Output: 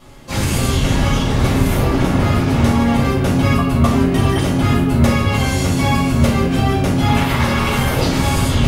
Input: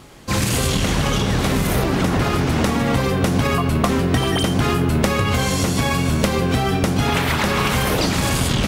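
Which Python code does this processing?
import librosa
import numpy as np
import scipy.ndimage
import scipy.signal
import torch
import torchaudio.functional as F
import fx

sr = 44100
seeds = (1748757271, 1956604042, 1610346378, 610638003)

y = fx.room_shoebox(x, sr, seeds[0], volume_m3=280.0, walls='furnished', distance_m=6.3)
y = y * librosa.db_to_amplitude(-10.0)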